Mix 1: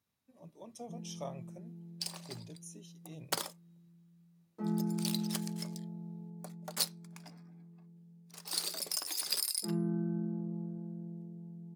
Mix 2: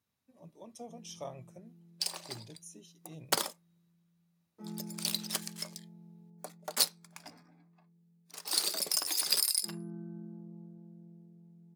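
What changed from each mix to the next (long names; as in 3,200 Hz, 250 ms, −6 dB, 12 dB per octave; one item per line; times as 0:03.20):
first sound −9.5 dB
second sound +5.0 dB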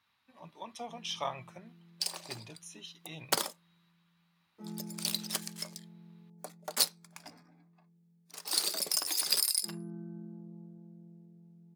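speech: add flat-topped bell 1,900 Hz +15.5 dB 2.8 octaves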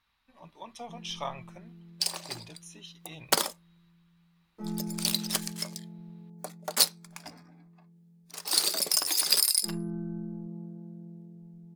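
first sound +8.0 dB
second sound +5.0 dB
master: remove high-pass filter 94 Hz 24 dB per octave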